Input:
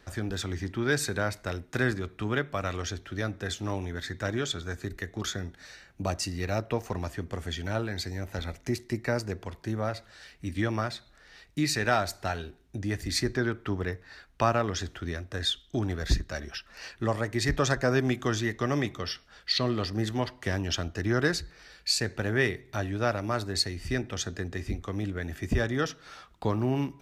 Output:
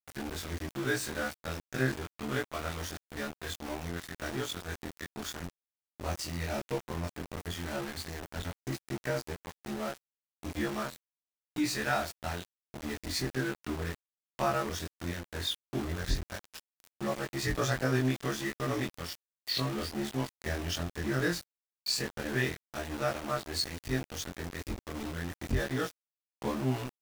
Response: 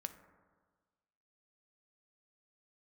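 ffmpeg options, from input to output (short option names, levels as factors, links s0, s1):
-af "afftfilt=real='re':imag='-im':win_size=2048:overlap=0.75,aeval=exprs='val(0)*gte(abs(val(0)),0.0158)':c=same"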